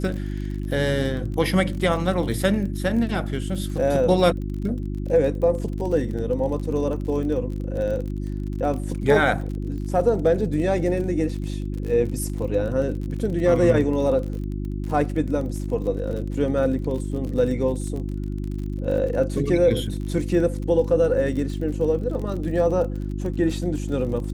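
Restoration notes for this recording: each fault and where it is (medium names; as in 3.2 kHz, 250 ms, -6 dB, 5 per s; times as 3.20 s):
crackle 40 per s -31 dBFS
hum 50 Hz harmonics 7 -28 dBFS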